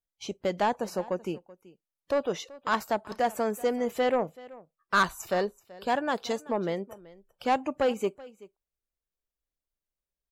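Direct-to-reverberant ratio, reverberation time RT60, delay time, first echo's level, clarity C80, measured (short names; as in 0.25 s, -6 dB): none, none, 0.381 s, -20.5 dB, none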